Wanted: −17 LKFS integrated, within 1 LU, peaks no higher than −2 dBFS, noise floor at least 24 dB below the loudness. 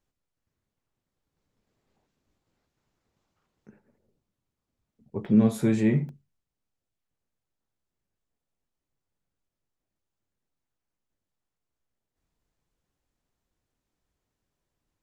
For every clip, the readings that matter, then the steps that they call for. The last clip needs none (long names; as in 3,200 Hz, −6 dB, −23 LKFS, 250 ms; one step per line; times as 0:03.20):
number of dropouts 2; longest dropout 1.2 ms; integrated loudness −23.5 LKFS; sample peak −9.5 dBFS; target loudness −17.0 LKFS
→ repair the gap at 0:05.25/0:06.09, 1.2 ms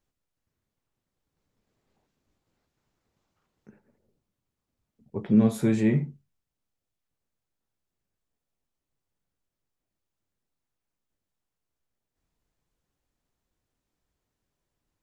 number of dropouts 0; integrated loudness −23.5 LKFS; sample peak −9.5 dBFS; target loudness −17.0 LKFS
→ level +6.5 dB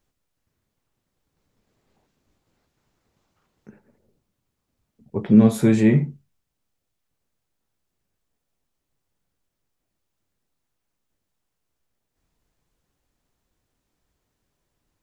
integrated loudness −17.0 LKFS; sample peak −3.0 dBFS; background noise floor −79 dBFS